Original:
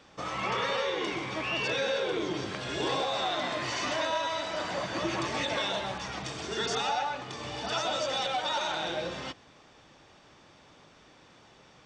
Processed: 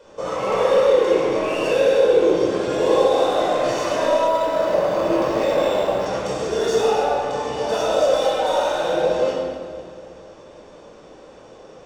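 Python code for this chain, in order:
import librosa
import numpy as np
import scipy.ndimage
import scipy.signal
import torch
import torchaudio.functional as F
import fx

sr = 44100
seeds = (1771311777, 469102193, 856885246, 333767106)

p1 = 10.0 ** (-32.0 / 20.0) * (np.abs((x / 10.0 ** (-32.0 / 20.0) + 3.0) % 4.0 - 2.0) - 1.0)
p2 = x + (p1 * 10.0 ** (-9.0 / 20.0))
p3 = fx.graphic_eq_10(p2, sr, hz=(125, 500, 2000, 4000, 8000), db=(-8, 12, -5, -5, 4))
p4 = fx.echo_feedback(p3, sr, ms=252, feedback_pct=55, wet_db=-16.0)
p5 = fx.room_shoebox(p4, sr, seeds[0], volume_m3=1900.0, walls='mixed', distance_m=5.0)
p6 = fx.resample_linear(p5, sr, factor=4, at=(4.27, 6.06))
y = p6 * 10.0 ** (-2.5 / 20.0)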